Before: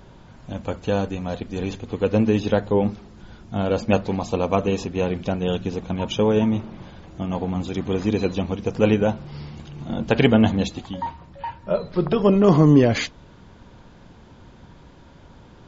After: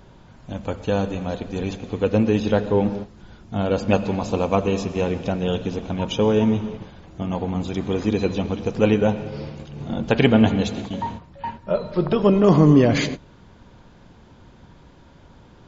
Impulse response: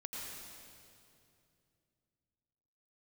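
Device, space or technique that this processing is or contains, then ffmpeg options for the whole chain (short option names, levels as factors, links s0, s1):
keyed gated reverb: -filter_complex "[0:a]asplit=3[s0][s1][s2];[1:a]atrim=start_sample=2205[s3];[s1][s3]afir=irnorm=-1:irlink=0[s4];[s2]apad=whole_len=691336[s5];[s4][s5]sidechaingate=range=0.0224:threshold=0.0158:ratio=16:detection=peak,volume=0.422[s6];[s0][s6]amix=inputs=2:normalize=0,volume=0.841"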